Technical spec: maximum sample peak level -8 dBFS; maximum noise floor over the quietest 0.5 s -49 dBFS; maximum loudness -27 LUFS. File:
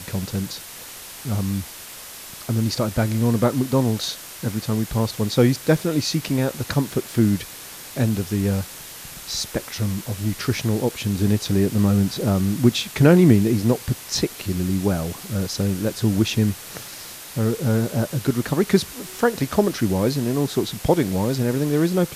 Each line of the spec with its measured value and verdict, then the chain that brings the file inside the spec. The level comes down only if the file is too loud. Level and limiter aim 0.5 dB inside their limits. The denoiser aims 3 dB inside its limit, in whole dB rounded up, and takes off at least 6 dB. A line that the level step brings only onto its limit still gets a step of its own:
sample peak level -2.5 dBFS: fail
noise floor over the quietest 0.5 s -38 dBFS: fail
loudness -22.0 LUFS: fail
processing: noise reduction 9 dB, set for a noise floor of -38 dBFS; trim -5.5 dB; peak limiter -8.5 dBFS

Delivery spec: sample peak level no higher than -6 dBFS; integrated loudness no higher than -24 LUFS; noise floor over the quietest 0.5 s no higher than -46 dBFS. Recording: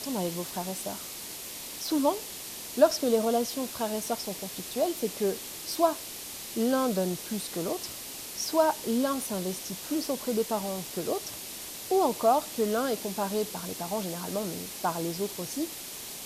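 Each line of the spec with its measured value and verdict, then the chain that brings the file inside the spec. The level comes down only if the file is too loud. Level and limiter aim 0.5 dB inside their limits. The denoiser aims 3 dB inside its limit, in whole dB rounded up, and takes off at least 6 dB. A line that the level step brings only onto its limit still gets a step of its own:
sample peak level -8.5 dBFS: pass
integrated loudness -30.0 LUFS: pass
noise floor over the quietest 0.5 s -41 dBFS: fail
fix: noise reduction 8 dB, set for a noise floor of -41 dBFS

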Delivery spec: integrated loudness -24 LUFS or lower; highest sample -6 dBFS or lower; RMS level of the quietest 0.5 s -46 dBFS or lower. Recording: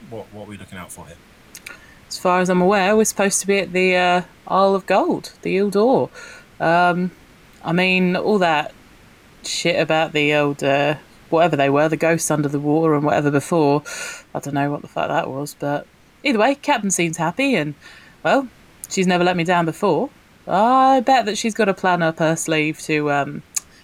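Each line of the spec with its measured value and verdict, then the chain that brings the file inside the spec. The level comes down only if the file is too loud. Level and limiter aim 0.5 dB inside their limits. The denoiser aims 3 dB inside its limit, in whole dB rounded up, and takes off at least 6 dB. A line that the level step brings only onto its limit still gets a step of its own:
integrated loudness -18.5 LUFS: fail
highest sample -5.0 dBFS: fail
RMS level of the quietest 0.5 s -48 dBFS: pass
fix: trim -6 dB

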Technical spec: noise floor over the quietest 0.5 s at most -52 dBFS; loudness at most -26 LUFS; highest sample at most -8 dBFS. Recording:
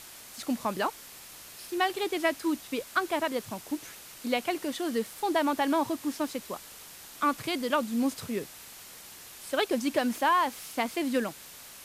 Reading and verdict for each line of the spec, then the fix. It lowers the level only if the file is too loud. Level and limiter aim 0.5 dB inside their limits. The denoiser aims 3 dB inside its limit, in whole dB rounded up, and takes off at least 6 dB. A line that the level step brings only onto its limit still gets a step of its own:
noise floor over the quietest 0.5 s -48 dBFS: fail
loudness -30.0 LUFS: pass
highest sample -12.5 dBFS: pass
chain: noise reduction 7 dB, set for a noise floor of -48 dBFS

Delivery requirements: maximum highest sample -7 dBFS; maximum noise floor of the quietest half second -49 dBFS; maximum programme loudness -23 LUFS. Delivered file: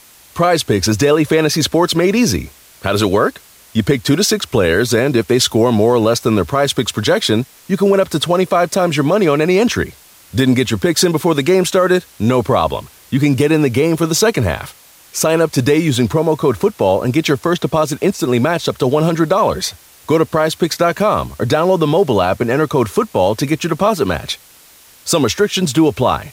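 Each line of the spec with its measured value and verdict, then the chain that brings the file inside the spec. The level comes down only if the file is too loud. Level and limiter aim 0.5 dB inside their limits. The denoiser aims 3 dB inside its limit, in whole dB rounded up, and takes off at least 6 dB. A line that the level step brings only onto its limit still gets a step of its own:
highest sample -2.5 dBFS: fail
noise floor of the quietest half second -45 dBFS: fail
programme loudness -15.0 LUFS: fail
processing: trim -8.5 dB

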